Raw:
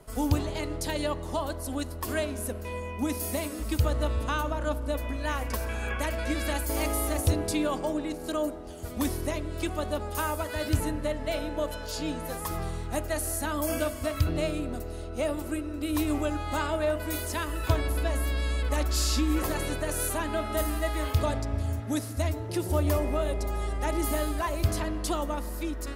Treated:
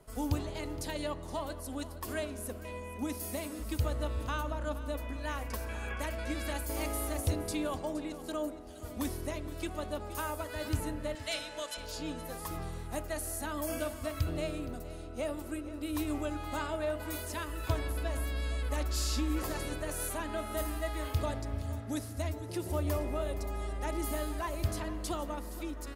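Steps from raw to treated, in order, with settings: 11.15–11.77 s: frequency weighting ITU-R 468; delay 469 ms -15.5 dB; trim -6.5 dB

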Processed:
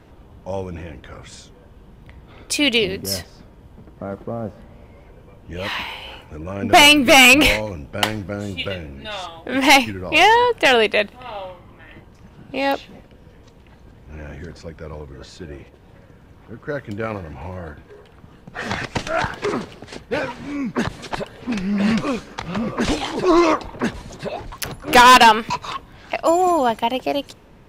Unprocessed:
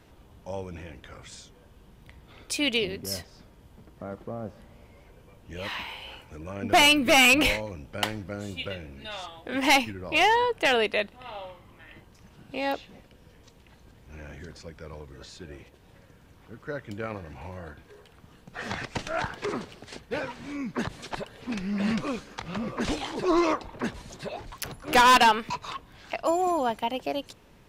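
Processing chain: tape noise reduction on one side only decoder only; trim +8.5 dB

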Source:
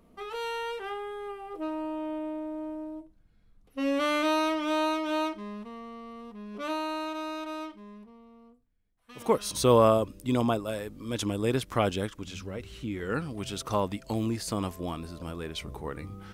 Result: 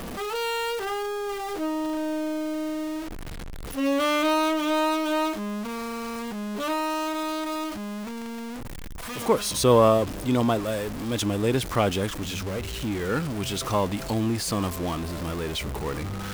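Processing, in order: jump at every zero crossing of -31.5 dBFS; trim +2 dB

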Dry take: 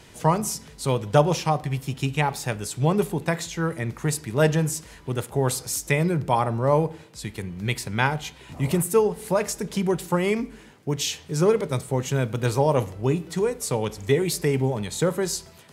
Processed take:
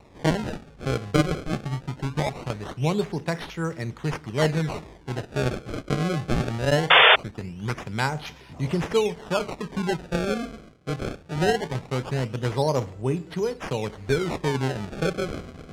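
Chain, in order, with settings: reverse; upward compressor, threshold -28 dBFS; reverse; decimation with a swept rate 27×, swing 160% 0.21 Hz; distance through air 56 m; painted sound noise, 6.90–7.16 s, 390–3600 Hz -11 dBFS; trim -2.5 dB

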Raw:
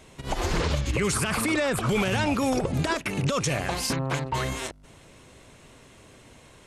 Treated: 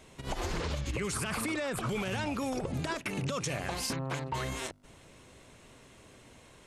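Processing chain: hum notches 50/100/150 Hz; compression, threshold -26 dBFS, peak gain reduction 6 dB; trim -4 dB

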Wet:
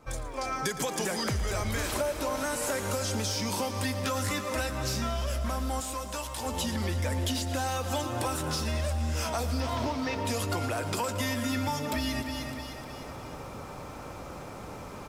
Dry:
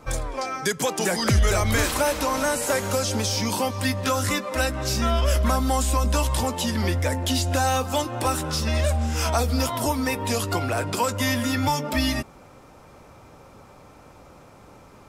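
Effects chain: 9.60–10.17 s: CVSD coder 32 kbps; feedback delay 305 ms, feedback 42%, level -14 dB; level rider gain up to 15 dB; saturation -3.5 dBFS, distortion -23 dB; 1.93–2.36 s: small resonant body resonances 370/590 Hz, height 9 dB; compression 6:1, threshold -20 dBFS, peak gain reduction 15 dB; 5.80–6.46 s: bass shelf 270 Hz -11.5 dB; bit-crushed delay 114 ms, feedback 80%, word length 8-bit, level -14.5 dB; trim -8.5 dB

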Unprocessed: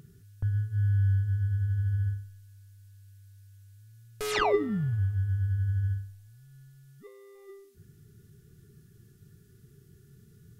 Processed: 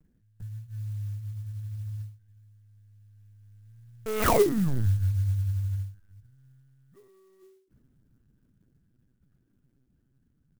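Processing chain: Doppler pass-by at 4.51 s, 12 m/s, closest 8.4 m; distance through air 220 m; delay 371 ms -23 dB; LPC vocoder at 8 kHz pitch kept; sampling jitter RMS 0.054 ms; trim +5 dB

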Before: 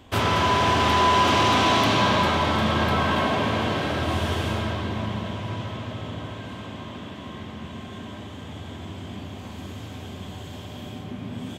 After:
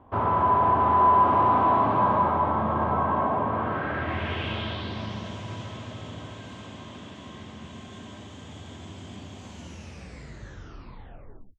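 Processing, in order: tape stop on the ending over 2.12 s; low-pass sweep 1 kHz -> 7.1 kHz, 3.46–5.36 s; trim -5.5 dB

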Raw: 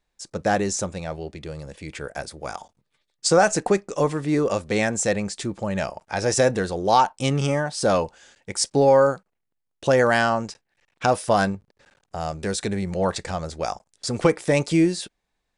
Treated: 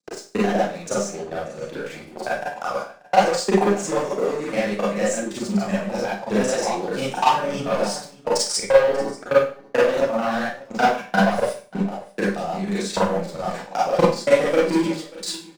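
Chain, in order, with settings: slices played last to first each 87 ms, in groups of 4; steep high-pass 160 Hz 36 dB/octave; treble shelf 9.4 kHz -11.5 dB; waveshaping leveller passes 3; transient shaper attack +3 dB, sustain +7 dB; reverse; upward compressor, threshold -21 dBFS; reverse; hum notches 60/120/180/240/300/360/420 Hz; transient shaper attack +11 dB, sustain -4 dB; flange 1.5 Hz, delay 0.1 ms, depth 9.9 ms, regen +41%; on a send: delay 587 ms -21 dB; on the sum: Schroeder reverb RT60 0.39 s, combs from 31 ms, DRR -7 dB; trim -16.5 dB

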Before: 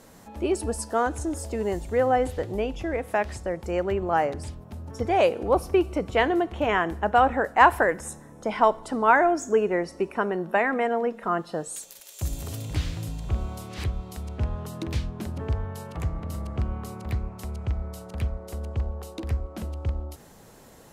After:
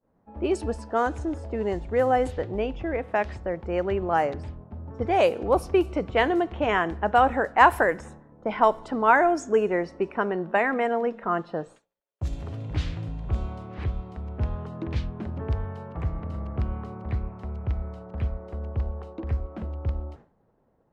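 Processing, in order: level-controlled noise filter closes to 960 Hz, open at -17 dBFS; expander -41 dBFS

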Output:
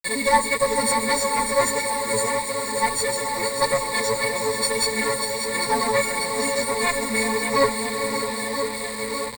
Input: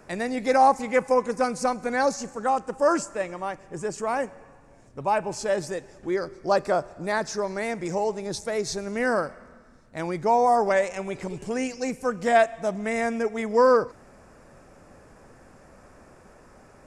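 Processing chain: partials quantised in pitch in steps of 4 st; tempo 1.8×; bass shelf 360 Hz -3.5 dB; on a send: shuffle delay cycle 987 ms, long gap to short 1.5:1, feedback 65%, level -9.5 dB; on the sum: flange 1.6 Hz, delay 5.4 ms, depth 4.1 ms, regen +6%; one-sided clip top -32.5 dBFS; echo that smears into a reverb 453 ms, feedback 45%, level -9 dB; bit crusher 6-bit; rippled EQ curve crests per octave 0.97, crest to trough 18 dB; trim +3 dB

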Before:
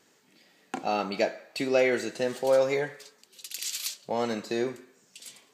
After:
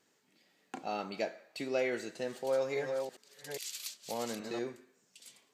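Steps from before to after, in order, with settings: 2.35–4.59 s: chunks repeated in reverse 409 ms, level -4.5 dB; trim -9 dB

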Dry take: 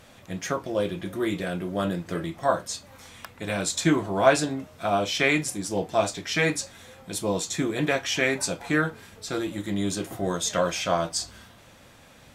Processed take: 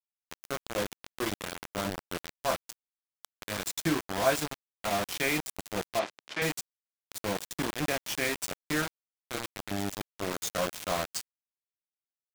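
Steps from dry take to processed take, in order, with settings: bit crusher 4-bit; 5.99–6.42 s: band-pass 260–3900 Hz; trim -7.5 dB

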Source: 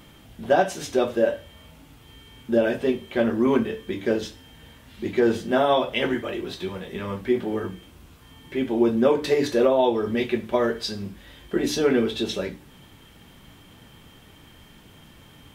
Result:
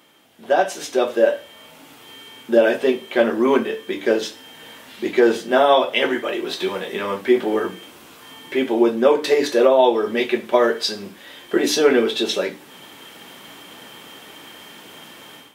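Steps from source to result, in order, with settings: high-pass 350 Hz 12 dB/octave; level rider gain up to 14 dB; trim -2 dB

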